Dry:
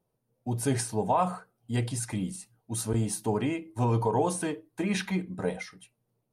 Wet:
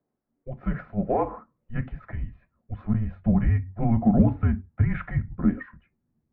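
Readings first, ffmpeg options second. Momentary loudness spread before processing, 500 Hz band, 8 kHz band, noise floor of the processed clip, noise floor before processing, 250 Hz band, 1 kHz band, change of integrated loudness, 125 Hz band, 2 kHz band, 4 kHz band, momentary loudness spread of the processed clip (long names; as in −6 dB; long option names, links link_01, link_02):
10 LU, −2.0 dB, below −40 dB, −79 dBFS, −79 dBFS, +6.0 dB, −3.0 dB, +4.0 dB, +6.0 dB, −1.0 dB, below −20 dB, 17 LU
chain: -af "highpass=frequency=370:width_type=q:width=0.5412,highpass=frequency=370:width_type=q:width=1.307,lowpass=frequency=2200:width_type=q:width=0.5176,lowpass=frequency=2200:width_type=q:width=0.7071,lowpass=frequency=2200:width_type=q:width=1.932,afreqshift=-230,asubboost=boost=7.5:cutoff=190,aeval=exprs='0.316*(cos(1*acos(clip(val(0)/0.316,-1,1)))-cos(1*PI/2))+0.00316*(cos(7*acos(clip(val(0)/0.316,-1,1)))-cos(7*PI/2))':channel_layout=same,volume=3dB"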